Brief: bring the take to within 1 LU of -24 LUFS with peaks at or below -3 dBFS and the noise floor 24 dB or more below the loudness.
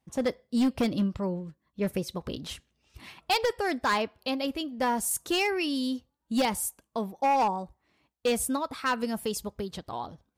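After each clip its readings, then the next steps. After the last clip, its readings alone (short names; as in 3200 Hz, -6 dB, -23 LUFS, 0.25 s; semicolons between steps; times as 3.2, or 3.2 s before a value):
clipped 1.5%; flat tops at -20.0 dBFS; loudness -29.5 LUFS; peak -20.0 dBFS; loudness target -24.0 LUFS
-> clip repair -20 dBFS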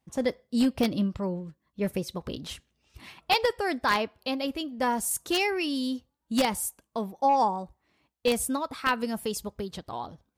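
clipped 0.0%; loudness -28.5 LUFS; peak -11.0 dBFS; loudness target -24.0 LUFS
-> gain +4.5 dB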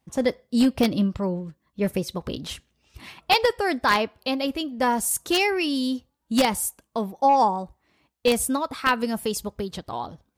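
loudness -24.0 LUFS; peak -6.5 dBFS; noise floor -75 dBFS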